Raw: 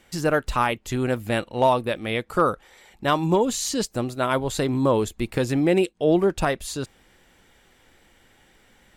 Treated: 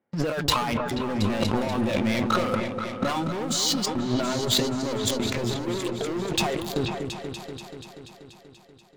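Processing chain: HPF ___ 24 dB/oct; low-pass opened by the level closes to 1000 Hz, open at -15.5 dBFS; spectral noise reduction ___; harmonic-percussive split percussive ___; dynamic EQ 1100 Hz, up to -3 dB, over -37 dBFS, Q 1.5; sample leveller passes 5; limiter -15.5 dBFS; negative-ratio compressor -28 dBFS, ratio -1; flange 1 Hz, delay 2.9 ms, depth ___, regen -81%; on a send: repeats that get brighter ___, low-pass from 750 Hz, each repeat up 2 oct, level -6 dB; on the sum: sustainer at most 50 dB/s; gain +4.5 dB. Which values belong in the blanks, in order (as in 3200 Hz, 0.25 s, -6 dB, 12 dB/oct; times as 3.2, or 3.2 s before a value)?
120 Hz, 13 dB, -5 dB, 2.8 ms, 0.241 s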